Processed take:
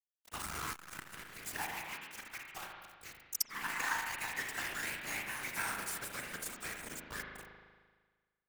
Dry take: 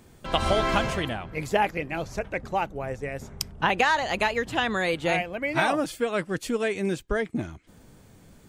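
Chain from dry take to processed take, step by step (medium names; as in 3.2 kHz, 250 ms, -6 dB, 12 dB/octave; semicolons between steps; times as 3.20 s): pre-emphasis filter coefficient 0.9; static phaser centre 1.4 kHz, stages 4; bit crusher 7-bit; whisper effect; spring tank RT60 1.5 s, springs 38 ms, chirp 65 ms, DRR 2 dB; ever faster or slower copies 312 ms, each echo +2 st, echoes 2, each echo -6 dB; transformer saturation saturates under 2.3 kHz; trim +1.5 dB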